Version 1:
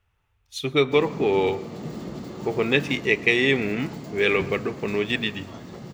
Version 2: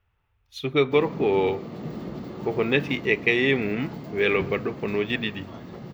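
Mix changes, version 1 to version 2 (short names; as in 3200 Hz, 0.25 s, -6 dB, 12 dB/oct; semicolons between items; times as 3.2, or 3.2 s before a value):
speech: send -6.5 dB; master: add bell 8300 Hz -14 dB 1.2 oct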